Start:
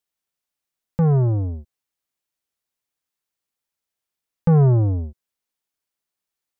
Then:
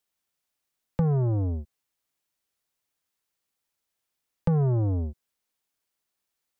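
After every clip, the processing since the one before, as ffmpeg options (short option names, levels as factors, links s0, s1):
-filter_complex "[0:a]acrossover=split=220|850[s0][s1][s2];[s0]acompressor=threshold=0.0398:ratio=4[s3];[s1]acompressor=threshold=0.02:ratio=4[s4];[s2]acompressor=threshold=0.00355:ratio=4[s5];[s3][s4][s5]amix=inputs=3:normalize=0,volume=1.33"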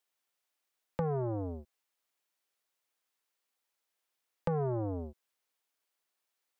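-af "bass=f=250:g=-14,treble=f=4000:g=-3"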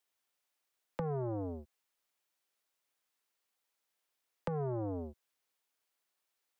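-filter_complex "[0:a]acrossover=split=110|300[s0][s1][s2];[s0]acompressor=threshold=0.00355:ratio=4[s3];[s1]acompressor=threshold=0.0112:ratio=4[s4];[s2]acompressor=threshold=0.0141:ratio=4[s5];[s3][s4][s5]amix=inputs=3:normalize=0"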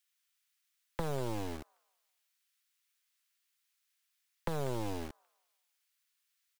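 -filter_complex "[0:a]acrossover=split=1300[s0][s1];[s0]acrusher=bits=5:dc=4:mix=0:aa=0.000001[s2];[s1]aecho=1:1:194|388|582|776:0.376|0.132|0.046|0.0161[s3];[s2][s3]amix=inputs=2:normalize=0,volume=1.58"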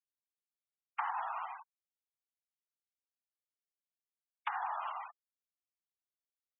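-af "afftfilt=real='hypot(re,im)*cos(2*PI*random(0))':imag='hypot(re,im)*sin(2*PI*random(1))':win_size=512:overlap=0.75,highpass=f=530:t=q:w=0.5412,highpass=f=530:t=q:w=1.307,lowpass=f=3300:t=q:w=0.5176,lowpass=f=3300:t=q:w=0.7071,lowpass=f=3300:t=q:w=1.932,afreqshift=320,afftfilt=real='re*gte(hypot(re,im),0.00355)':imag='im*gte(hypot(re,im),0.00355)':win_size=1024:overlap=0.75,volume=3.35"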